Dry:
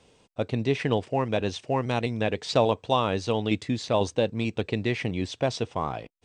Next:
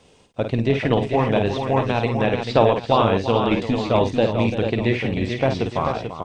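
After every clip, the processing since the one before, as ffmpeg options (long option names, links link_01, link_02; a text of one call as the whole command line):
ffmpeg -i in.wav -filter_complex "[0:a]acrossover=split=3700[link_01][link_02];[link_02]acompressor=threshold=-53dB:ratio=4:attack=1:release=60[link_03];[link_01][link_03]amix=inputs=2:normalize=0,tremolo=f=240:d=0.462,asplit=2[link_04][link_05];[link_05]aecho=0:1:52|341|440|863:0.447|0.282|0.473|0.168[link_06];[link_04][link_06]amix=inputs=2:normalize=0,volume=7dB" out.wav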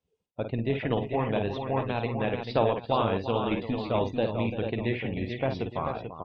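ffmpeg -i in.wav -af "afftdn=noise_reduction=25:noise_floor=-40,volume=-8.5dB" out.wav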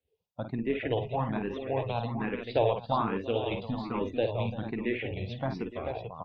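ffmpeg -i in.wav -filter_complex "[0:a]asplit=2[link_01][link_02];[link_02]afreqshift=1.2[link_03];[link_01][link_03]amix=inputs=2:normalize=1" out.wav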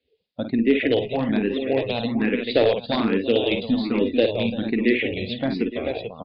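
ffmpeg -i in.wav -af "aeval=exprs='clip(val(0),-1,0.0841)':channel_layout=same,aresample=11025,aresample=44100,equalizer=frequency=125:width_type=o:width=1:gain=-6,equalizer=frequency=250:width_type=o:width=1:gain=11,equalizer=frequency=500:width_type=o:width=1:gain=6,equalizer=frequency=1000:width_type=o:width=1:gain=-10,equalizer=frequency=2000:width_type=o:width=1:gain=8,equalizer=frequency=4000:width_type=o:width=1:gain=11,volume=3.5dB" out.wav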